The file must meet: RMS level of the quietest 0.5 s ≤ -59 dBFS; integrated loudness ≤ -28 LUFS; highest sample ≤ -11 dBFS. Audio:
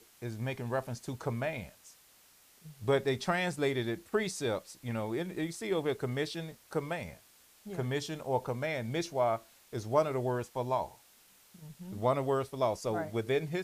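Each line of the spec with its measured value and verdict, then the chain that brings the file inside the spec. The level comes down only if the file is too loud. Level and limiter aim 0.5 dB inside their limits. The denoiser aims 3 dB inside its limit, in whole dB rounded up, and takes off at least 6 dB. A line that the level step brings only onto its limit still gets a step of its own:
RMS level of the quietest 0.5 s -62 dBFS: pass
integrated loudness -34.0 LUFS: pass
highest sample -14.0 dBFS: pass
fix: none needed

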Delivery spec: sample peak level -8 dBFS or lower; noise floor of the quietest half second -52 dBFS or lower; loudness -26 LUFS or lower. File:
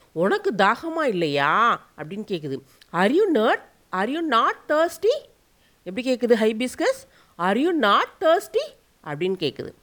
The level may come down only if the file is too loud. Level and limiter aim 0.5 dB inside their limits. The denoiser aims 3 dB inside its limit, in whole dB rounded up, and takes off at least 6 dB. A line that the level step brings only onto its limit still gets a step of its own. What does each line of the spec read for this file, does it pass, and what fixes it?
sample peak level -5.5 dBFS: fail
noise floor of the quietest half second -60 dBFS: pass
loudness -22.0 LUFS: fail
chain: trim -4.5 dB

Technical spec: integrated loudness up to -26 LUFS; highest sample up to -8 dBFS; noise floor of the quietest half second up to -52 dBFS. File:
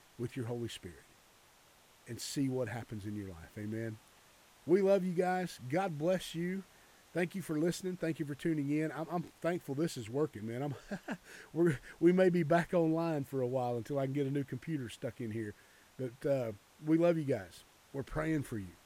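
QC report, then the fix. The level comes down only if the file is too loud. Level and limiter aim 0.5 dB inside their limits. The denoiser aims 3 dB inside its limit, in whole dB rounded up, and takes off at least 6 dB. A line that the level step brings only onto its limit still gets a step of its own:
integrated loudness -35.5 LUFS: pass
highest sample -16.0 dBFS: pass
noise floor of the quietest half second -64 dBFS: pass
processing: none needed

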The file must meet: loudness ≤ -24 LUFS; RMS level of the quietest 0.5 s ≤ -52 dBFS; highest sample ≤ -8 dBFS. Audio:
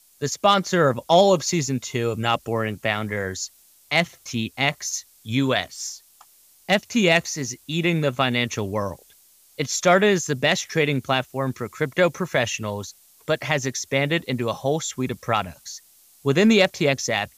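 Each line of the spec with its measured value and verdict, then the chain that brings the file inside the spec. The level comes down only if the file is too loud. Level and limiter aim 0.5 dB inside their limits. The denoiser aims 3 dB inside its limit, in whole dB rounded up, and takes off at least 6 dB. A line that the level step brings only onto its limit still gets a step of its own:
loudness -22.5 LUFS: fail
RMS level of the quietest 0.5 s -55 dBFS: pass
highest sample -5.0 dBFS: fail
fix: trim -2 dB; peak limiter -8.5 dBFS

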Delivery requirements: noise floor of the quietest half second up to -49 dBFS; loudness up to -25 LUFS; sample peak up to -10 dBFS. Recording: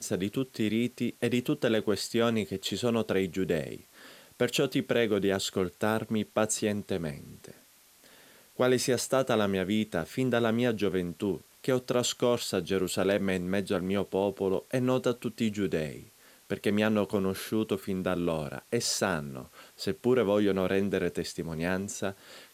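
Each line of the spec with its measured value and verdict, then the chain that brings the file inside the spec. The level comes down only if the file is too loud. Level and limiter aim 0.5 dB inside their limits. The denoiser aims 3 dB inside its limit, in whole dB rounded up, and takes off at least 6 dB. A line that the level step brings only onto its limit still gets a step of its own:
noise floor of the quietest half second -59 dBFS: pass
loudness -29.5 LUFS: pass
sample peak -10.5 dBFS: pass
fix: none needed

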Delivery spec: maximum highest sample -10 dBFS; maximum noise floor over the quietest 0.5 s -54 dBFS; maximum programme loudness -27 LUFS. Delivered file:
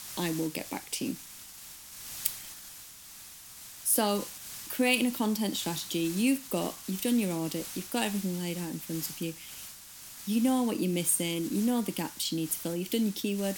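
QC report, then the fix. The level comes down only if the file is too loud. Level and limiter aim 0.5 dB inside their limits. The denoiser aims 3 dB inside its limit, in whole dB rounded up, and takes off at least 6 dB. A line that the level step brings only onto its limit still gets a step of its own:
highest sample -9.0 dBFS: fail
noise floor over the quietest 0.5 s -49 dBFS: fail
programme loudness -30.5 LUFS: pass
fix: noise reduction 8 dB, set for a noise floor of -49 dBFS; peak limiter -10.5 dBFS

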